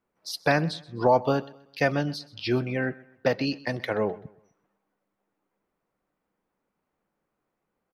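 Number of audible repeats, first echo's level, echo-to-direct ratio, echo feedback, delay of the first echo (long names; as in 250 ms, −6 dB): 2, −21.0 dB, −20.5 dB, 36%, 128 ms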